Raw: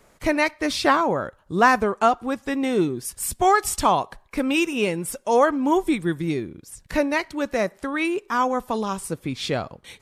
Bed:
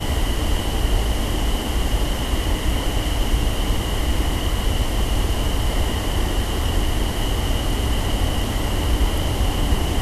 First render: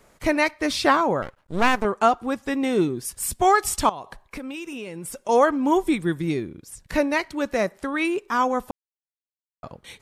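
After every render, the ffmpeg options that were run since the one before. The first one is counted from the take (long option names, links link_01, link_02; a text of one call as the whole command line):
ffmpeg -i in.wav -filter_complex "[0:a]asettb=1/sr,asplit=3[link_01][link_02][link_03];[link_01]atrim=end=1.224[link_04];[link_02]atrim=start=1.22:end=1.85,asetpts=PTS-STARTPTS,afade=type=in:duration=0.004:curve=qsin,afade=type=out:start_time=0.626:duration=0.004:curve=qsin,aeval=exprs='max(val(0),0)':channel_layout=same[link_05];[link_03]atrim=start=1.846[link_06];[link_04][link_05]acrossfade=duration=0.004:curve1=hsin:curve2=qsin[link_07];[link_07][link_06]acrossfade=duration=0.004:curve1=qsin:curve2=hsin,asettb=1/sr,asplit=3[link_08][link_09][link_10];[link_08]atrim=end=3.894[link_11];[link_09]atrim=start=3.89:end=5.29,asetpts=PTS-STARTPTS,afade=type=in:duration=0.004:curve=qsin,afade=type=out:start_time=1.396:duration=0.004:curve=qsin,acompressor=threshold=-30dB:ratio=12:attack=3.2:release=140:knee=1:detection=peak[link_12];[link_10]atrim=start=5.286[link_13];[link_11][link_12]acrossfade=duration=0.004:curve1=hsin:curve2=qsin[link_14];[link_14][link_13]acrossfade=duration=0.004:curve1=qsin:curve2=hsin,asplit=3[link_15][link_16][link_17];[link_15]atrim=end=8.71,asetpts=PTS-STARTPTS,afade=type=out:start_time=8.706:duration=0.004:curve=hsin[link_18];[link_16]atrim=start=8.71:end=9.63,asetpts=PTS-STARTPTS,volume=0[link_19];[link_17]atrim=start=9.63,asetpts=PTS-STARTPTS,afade=type=in:duration=0.004:curve=hsin[link_20];[link_18][link_19][link_20]concat=n=3:v=0:a=1" out.wav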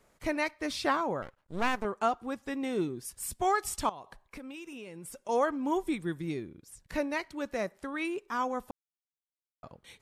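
ffmpeg -i in.wav -af "volume=-10dB" out.wav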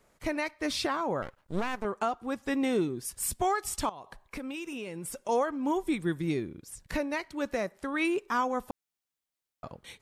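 ffmpeg -i in.wav -af "dynaudnorm=framelen=230:gausssize=3:maxgain=6dB,alimiter=limit=-19dB:level=0:latency=1:release=493" out.wav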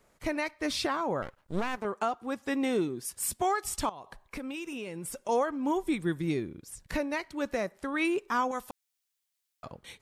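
ffmpeg -i in.wav -filter_complex "[0:a]asettb=1/sr,asplit=3[link_01][link_02][link_03];[link_01]atrim=end=1.774[link_04];[link_02]atrim=start=1.77:end=3.63,asetpts=PTS-STARTPTS,afade=type=in:duration=0.004:curve=qsin,afade=type=out:start_time=1.856:duration=0.004:curve=qsin,highpass=frequency=140:poles=1[link_05];[link_03]atrim=start=3.626[link_06];[link_04][link_05]acrossfade=duration=0.004:curve1=hsin:curve2=qsin[link_07];[link_07][link_06]acrossfade=duration=0.004:curve1=qsin:curve2=hsin,asettb=1/sr,asplit=3[link_08][link_09][link_10];[link_08]atrim=end=8.514[link_11];[link_09]atrim=start=8.51:end=9.66,asetpts=PTS-STARTPTS,afade=type=in:duration=0.004:curve=qsin,afade=type=out:start_time=1.146:duration=0.004:curve=qsin,tiltshelf=frequency=1300:gain=-7[link_12];[link_10]atrim=start=9.656[link_13];[link_11][link_12]acrossfade=duration=0.004:curve1=hsin:curve2=qsin[link_14];[link_14][link_13]acrossfade=duration=0.004:curve1=qsin:curve2=hsin" out.wav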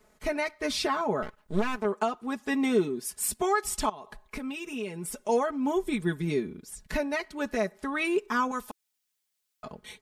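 ffmpeg -i in.wav -af "equalizer=frequency=330:width=3.9:gain=5,aecho=1:1:4.7:0.82" out.wav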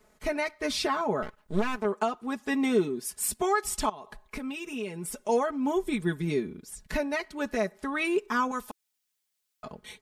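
ffmpeg -i in.wav -af anull out.wav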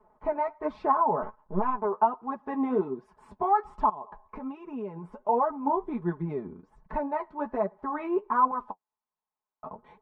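ffmpeg -i in.wav -af "lowpass=frequency=960:width_type=q:width=4.9,flanger=delay=4.4:depth=8.4:regen=34:speed=1.3:shape=triangular" out.wav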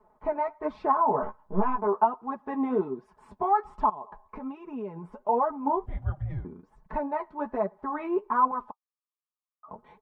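ffmpeg -i in.wav -filter_complex "[0:a]asplit=3[link_01][link_02][link_03];[link_01]afade=type=out:start_time=1.03:duration=0.02[link_04];[link_02]asplit=2[link_05][link_06];[link_06]adelay=15,volume=-3dB[link_07];[link_05][link_07]amix=inputs=2:normalize=0,afade=type=in:start_time=1.03:duration=0.02,afade=type=out:start_time=2.03:duration=0.02[link_08];[link_03]afade=type=in:start_time=2.03:duration=0.02[link_09];[link_04][link_08][link_09]amix=inputs=3:normalize=0,asettb=1/sr,asplit=3[link_10][link_11][link_12];[link_10]atrim=end=5.864[link_13];[link_11]atrim=start=5.86:end=6.45,asetpts=PTS-STARTPTS,afade=type=in:duration=0.004:curve=qsin,afade=type=out:start_time=0.586:duration=0.004:curve=qsin,afreqshift=-280[link_14];[link_12]atrim=start=6.446[link_15];[link_13][link_14]acrossfade=duration=0.004:curve1=hsin:curve2=qsin[link_16];[link_16][link_15]acrossfade=duration=0.004:curve1=qsin:curve2=hsin,asplit=3[link_17][link_18][link_19];[link_17]afade=type=out:start_time=8.7:duration=0.02[link_20];[link_18]bandpass=frequency=1200:width_type=q:width=15,afade=type=in:start_time=8.7:duration=0.02,afade=type=out:start_time=9.68:duration=0.02[link_21];[link_19]afade=type=in:start_time=9.68:duration=0.02[link_22];[link_20][link_21][link_22]amix=inputs=3:normalize=0" out.wav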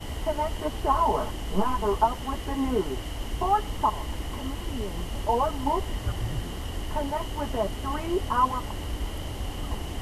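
ffmpeg -i in.wav -i bed.wav -filter_complex "[1:a]volume=-12.5dB[link_01];[0:a][link_01]amix=inputs=2:normalize=0" out.wav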